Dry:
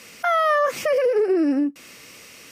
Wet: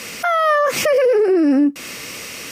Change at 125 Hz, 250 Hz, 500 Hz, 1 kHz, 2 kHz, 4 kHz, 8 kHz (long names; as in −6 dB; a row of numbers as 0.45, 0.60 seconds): can't be measured, +6.0 dB, +4.5 dB, +3.5 dB, +5.0 dB, +8.5 dB, +11.5 dB